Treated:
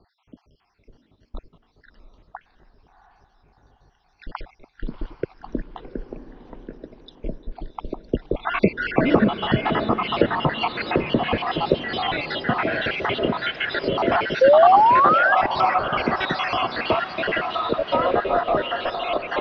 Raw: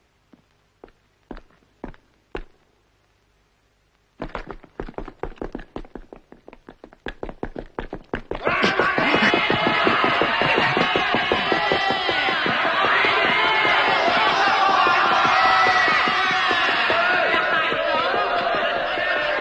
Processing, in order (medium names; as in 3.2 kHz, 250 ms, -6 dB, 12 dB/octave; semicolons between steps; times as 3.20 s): random holes in the spectrogram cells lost 66%; elliptic low-pass 5.6 kHz, stop band 40 dB; bass shelf 270 Hz +4.5 dB; painted sound rise, 14.41–15.35 s, 510–1700 Hz -16 dBFS; peaking EQ 1.9 kHz -7.5 dB 1.6 oct; low-pass that closes with the level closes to 2.1 kHz, closed at -22.5 dBFS; on a send: echo that smears into a reverb 701 ms, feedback 48%, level -12 dB; on the sum: trim +5 dB